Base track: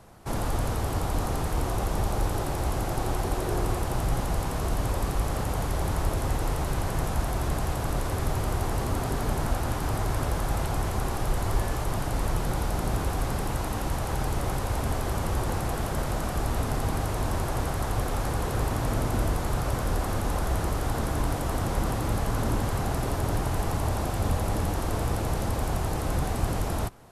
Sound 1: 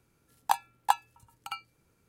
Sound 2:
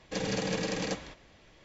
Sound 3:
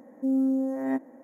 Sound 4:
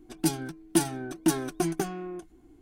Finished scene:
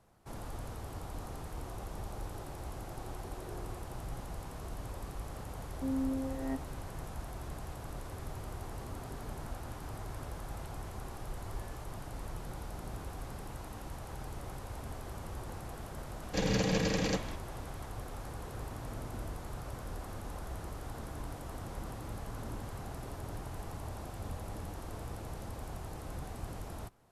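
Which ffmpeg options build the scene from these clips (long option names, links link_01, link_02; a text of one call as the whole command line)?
ffmpeg -i bed.wav -i cue0.wav -i cue1.wav -i cue2.wav -filter_complex "[0:a]volume=-15dB[link_01];[2:a]lowshelf=frequency=120:gain=11.5[link_02];[3:a]atrim=end=1.23,asetpts=PTS-STARTPTS,volume=-9.5dB,afade=type=in:duration=0.004:curve=hsin,afade=type=out:start_time=1.226:duration=0.004:curve=hsin,adelay=5590[link_03];[link_02]atrim=end=1.64,asetpts=PTS-STARTPTS,volume=-0.5dB,afade=type=in:duration=0.004:curve=hsin,afade=type=out:start_time=1.636:duration=0.004:curve=hsin,adelay=16220[link_04];[link_01][link_03][link_04]amix=inputs=3:normalize=0" out.wav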